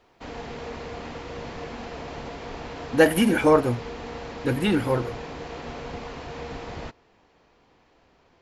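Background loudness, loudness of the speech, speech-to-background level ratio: -36.5 LUFS, -22.0 LUFS, 14.5 dB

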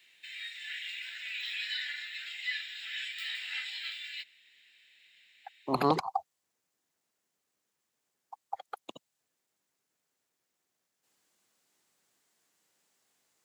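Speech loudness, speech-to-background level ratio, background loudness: -32.5 LUFS, 4.5 dB, -37.0 LUFS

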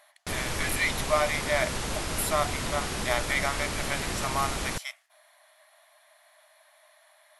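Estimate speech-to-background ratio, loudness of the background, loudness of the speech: 1.5 dB, -32.0 LUFS, -30.5 LUFS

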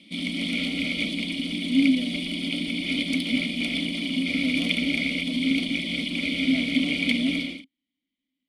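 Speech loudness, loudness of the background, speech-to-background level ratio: -30.0 LUFS, -26.0 LUFS, -4.0 dB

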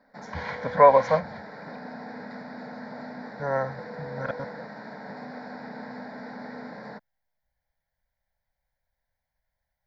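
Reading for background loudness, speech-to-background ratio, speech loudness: -39.5 LUFS, 17.0 dB, -22.5 LUFS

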